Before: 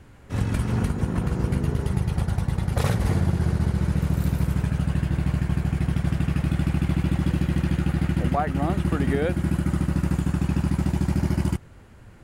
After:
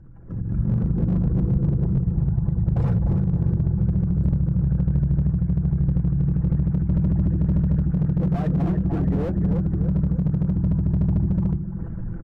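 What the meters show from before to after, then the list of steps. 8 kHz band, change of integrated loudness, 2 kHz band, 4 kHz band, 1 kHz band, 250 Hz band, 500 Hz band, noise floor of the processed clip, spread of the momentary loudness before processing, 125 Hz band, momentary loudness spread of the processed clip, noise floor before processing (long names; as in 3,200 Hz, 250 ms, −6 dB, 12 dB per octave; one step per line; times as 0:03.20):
below −25 dB, +2.0 dB, below −10 dB, below −15 dB, −9.0 dB, +2.5 dB, −3.0 dB, −30 dBFS, 2 LU, +3.0 dB, 2 LU, −47 dBFS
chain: spectral envelope exaggerated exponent 2
mains-hum notches 50/100/150/200/250/300/350 Hz
comb filter 6 ms, depth 56%
downward compressor 5 to 1, threshold −38 dBFS, peak gain reduction 17.5 dB
flat-topped bell 2,900 Hz −8.5 dB 1.3 octaves
automatic gain control gain up to 15 dB
high-frequency loss of the air 81 metres
repeating echo 298 ms, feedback 44%, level −11 dB
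slew-rate limiting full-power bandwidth 15 Hz
level +4 dB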